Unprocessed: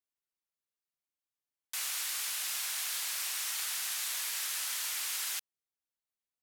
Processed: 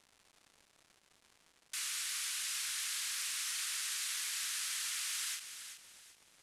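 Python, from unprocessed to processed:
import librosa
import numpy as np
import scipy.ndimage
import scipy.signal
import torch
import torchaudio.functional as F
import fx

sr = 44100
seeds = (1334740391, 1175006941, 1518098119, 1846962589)

p1 = scipy.signal.sosfilt(scipy.signal.butter(4, 1200.0, 'highpass', fs=sr, output='sos'), x)
p2 = fx.dmg_crackle(p1, sr, seeds[0], per_s=330.0, level_db=-47.0)
p3 = scipy.signal.sosfilt(scipy.signal.butter(4, 11000.0, 'lowpass', fs=sr, output='sos'), p2)
p4 = p3 + fx.echo_feedback(p3, sr, ms=379, feedback_pct=32, wet_db=-10.0, dry=0)
p5 = fx.end_taper(p4, sr, db_per_s=130.0)
y = F.gain(torch.from_numpy(p5), -2.0).numpy()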